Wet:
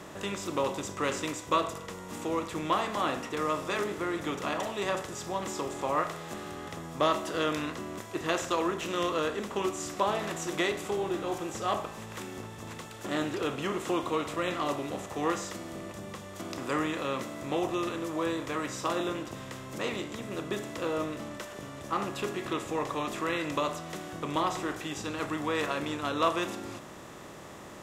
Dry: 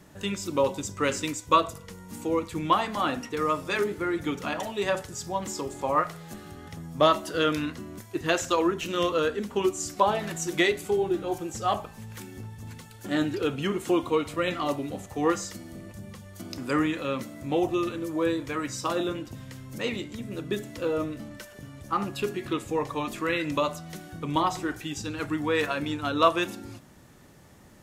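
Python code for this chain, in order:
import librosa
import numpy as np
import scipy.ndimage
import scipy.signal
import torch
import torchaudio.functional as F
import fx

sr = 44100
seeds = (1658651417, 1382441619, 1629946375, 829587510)

y = fx.bin_compress(x, sr, power=0.6)
y = y * 10.0 ** (-8.5 / 20.0)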